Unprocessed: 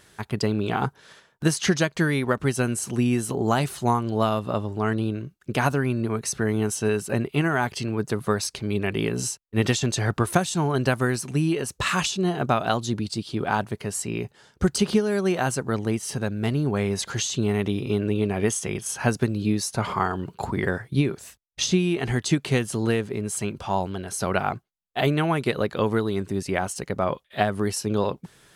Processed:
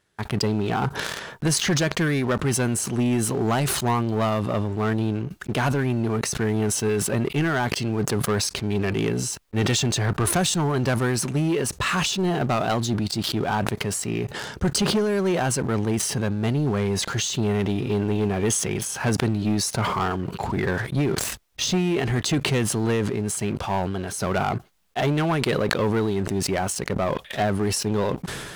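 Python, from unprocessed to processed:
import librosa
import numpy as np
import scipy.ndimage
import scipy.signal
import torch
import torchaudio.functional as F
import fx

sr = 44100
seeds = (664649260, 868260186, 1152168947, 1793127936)

y = fx.high_shelf(x, sr, hz=4600.0, db=-5.0)
y = fx.leveller(y, sr, passes=3)
y = fx.sustainer(y, sr, db_per_s=34.0)
y = F.gain(torch.from_numpy(y), -8.5).numpy()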